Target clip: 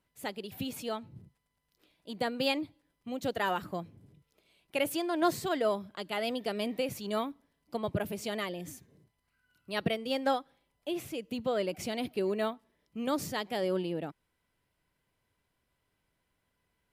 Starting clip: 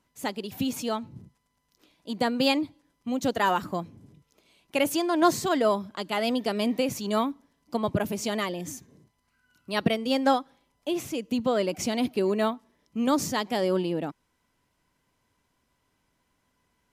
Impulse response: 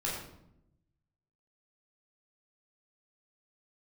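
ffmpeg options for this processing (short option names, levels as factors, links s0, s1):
-af "equalizer=f=250:t=o:w=0.67:g=-6,equalizer=f=1000:t=o:w=0.67:g=-5,equalizer=f=6300:t=o:w=0.67:g=-8,volume=0.631"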